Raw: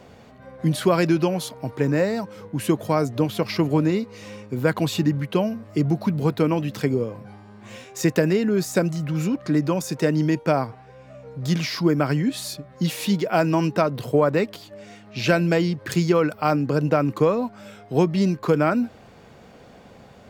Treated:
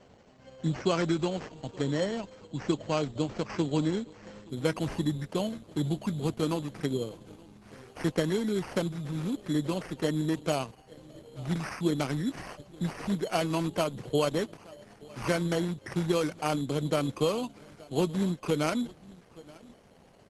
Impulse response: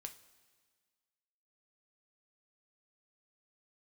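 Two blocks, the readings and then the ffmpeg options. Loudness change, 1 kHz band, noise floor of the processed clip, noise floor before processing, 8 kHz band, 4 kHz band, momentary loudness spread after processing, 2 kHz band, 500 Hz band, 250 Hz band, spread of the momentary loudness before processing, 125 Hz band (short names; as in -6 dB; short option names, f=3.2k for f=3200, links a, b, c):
-8.5 dB, -9.0 dB, -57 dBFS, -48 dBFS, -7.0 dB, -5.0 dB, 14 LU, -9.0 dB, -8.5 dB, -8.5 dB, 11 LU, -9.0 dB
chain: -filter_complex "[0:a]asplit=2[a][b];[b]adelay=874.6,volume=-21dB,highshelf=f=4k:g=-19.7[c];[a][c]amix=inputs=2:normalize=0,acrusher=samples=12:mix=1:aa=0.000001,volume=-8dB" -ar 48000 -c:a libopus -b:a 12k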